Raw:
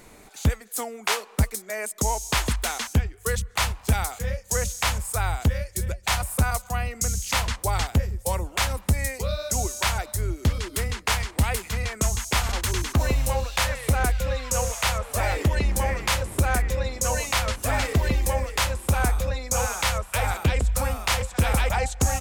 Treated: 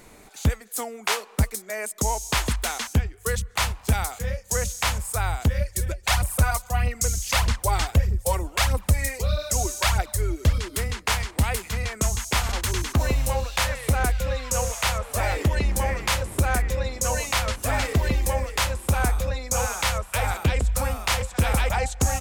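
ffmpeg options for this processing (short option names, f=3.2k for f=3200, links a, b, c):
-filter_complex "[0:a]asplit=3[a][b][c];[a]afade=t=out:st=5.56:d=0.02[d];[b]aphaser=in_gain=1:out_gain=1:delay=3.4:decay=0.51:speed=1.6:type=triangular,afade=t=in:st=5.56:d=0.02,afade=t=out:st=10.58:d=0.02[e];[c]afade=t=in:st=10.58:d=0.02[f];[d][e][f]amix=inputs=3:normalize=0"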